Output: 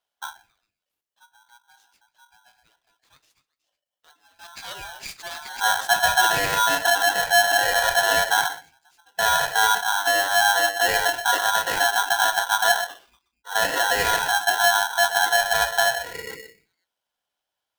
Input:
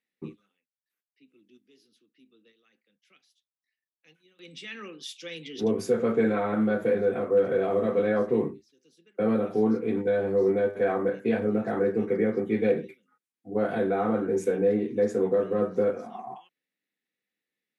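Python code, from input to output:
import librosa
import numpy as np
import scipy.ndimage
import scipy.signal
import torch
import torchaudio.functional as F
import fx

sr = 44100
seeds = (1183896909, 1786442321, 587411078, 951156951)

y = fx.echo_stepped(x, sr, ms=123, hz=660.0, octaves=1.4, feedback_pct=70, wet_db=-8.0)
y = fx.spec_gate(y, sr, threshold_db=-25, keep='strong')
y = y * np.sign(np.sin(2.0 * np.pi * 1200.0 * np.arange(len(y)) / sr))
y = F.gain(torch.from_numpy(y), 4.0).numpy()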